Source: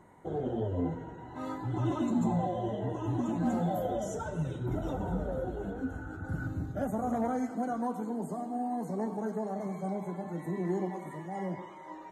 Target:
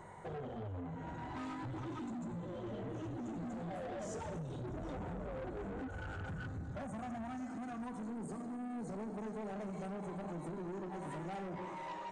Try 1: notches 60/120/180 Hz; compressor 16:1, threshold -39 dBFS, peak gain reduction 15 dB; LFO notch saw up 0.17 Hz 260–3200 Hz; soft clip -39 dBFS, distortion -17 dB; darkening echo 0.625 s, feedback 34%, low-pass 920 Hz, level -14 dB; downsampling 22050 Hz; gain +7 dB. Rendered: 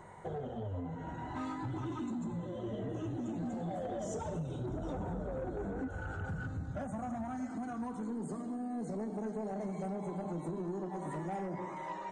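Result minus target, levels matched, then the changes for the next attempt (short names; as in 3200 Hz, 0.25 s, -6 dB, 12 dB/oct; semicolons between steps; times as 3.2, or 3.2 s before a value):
soft clip: distortion -8 dB
change: soft clip -47 dBFS, distortion -9 dB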